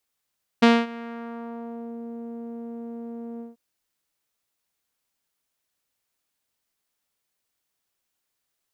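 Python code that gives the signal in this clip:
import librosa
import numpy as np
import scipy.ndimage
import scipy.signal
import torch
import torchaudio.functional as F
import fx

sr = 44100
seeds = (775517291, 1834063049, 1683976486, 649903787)

y = fx.sub_voice(sr, note=58, wave='saw', cutoff_hz=480.0, q=1.1, env_oct=3.0, env_s=1.35, attack_ms=12.0, decay_s=0.23, sustain_db=-22.5, release_s=0.16, note_s=2.78, slope=12)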